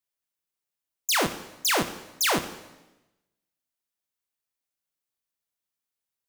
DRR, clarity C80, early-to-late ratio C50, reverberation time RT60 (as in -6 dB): 9.5 dB, 14.0 dB, 12.0 dB, 1.0 s